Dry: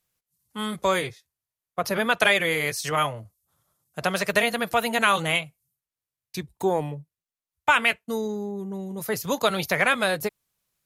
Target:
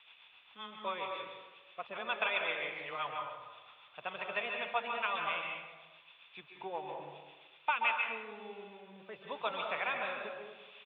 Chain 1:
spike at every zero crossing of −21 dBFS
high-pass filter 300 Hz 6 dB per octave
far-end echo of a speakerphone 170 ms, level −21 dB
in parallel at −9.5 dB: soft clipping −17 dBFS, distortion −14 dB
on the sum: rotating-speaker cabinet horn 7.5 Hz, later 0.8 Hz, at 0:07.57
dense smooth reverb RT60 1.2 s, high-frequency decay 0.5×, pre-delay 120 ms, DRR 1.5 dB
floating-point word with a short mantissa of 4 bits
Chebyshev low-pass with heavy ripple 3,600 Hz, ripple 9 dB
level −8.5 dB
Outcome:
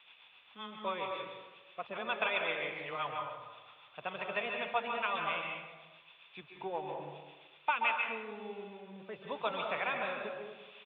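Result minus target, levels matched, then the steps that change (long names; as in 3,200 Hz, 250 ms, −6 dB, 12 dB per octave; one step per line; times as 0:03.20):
soft clipping: distortion +9 dB; 250 Hz band +4.5 dB
change: high-pass filter 670 Hz 6 dB per octave
change: soft clipping −10.5 dBFS, distortion −23 dB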